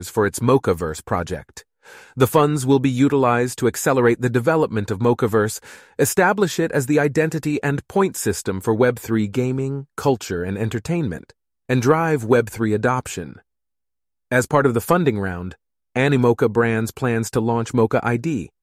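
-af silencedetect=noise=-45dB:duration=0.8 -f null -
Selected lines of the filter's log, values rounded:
silence_start: 13.40
silence_end: 14.31 | silence_duration: 0.91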